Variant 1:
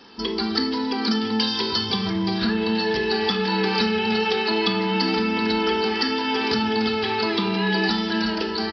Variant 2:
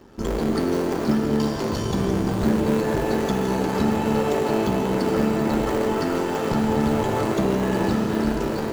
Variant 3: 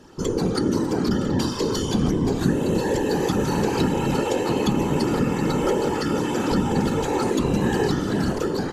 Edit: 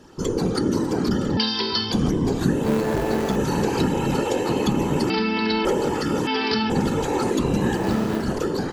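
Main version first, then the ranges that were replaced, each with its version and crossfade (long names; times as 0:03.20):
3
0:01.37–0:01.92: punch in from 1
0:02.64–0:03.36: punch in from 2
0:05.10–0:05.65: punch in from 1
0:06.27–0:06.70: punch in from 1
0:07.80–0:08.23: punch in from 2, crossfade 0.16 s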